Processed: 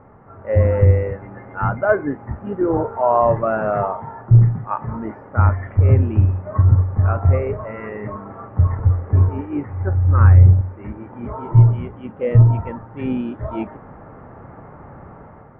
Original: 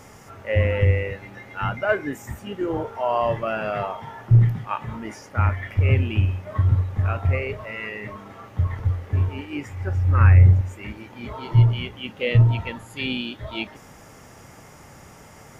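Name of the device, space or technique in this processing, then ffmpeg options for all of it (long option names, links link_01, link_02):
action camera in a waterproof case: -af "lowpass=frequency=1400:width=0.5412,lowpass=frequency=1400:width=1.3066,dynaudnorm=framelen=170:gausssize=5:maxgain=7.5dB" -ar 48000 -c:a aac -b:a 96k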